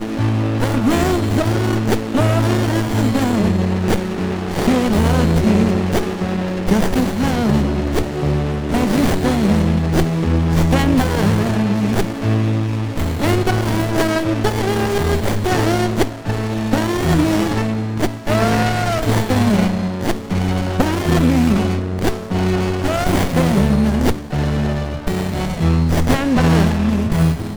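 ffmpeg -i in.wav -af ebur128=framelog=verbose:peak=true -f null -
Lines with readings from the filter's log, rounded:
Integrated loudness:
  I:         -17.5 LUFS
  Threshold: -27.5 LUFS
Loudness range:
  LRA:         1.7 LU
  Threshold: -37.5 LUFS
  LRA low:   -18.3 LUFS
  LRA high:  -16.6 LUFS
True peak:
  Peak:       -1.7 dBFS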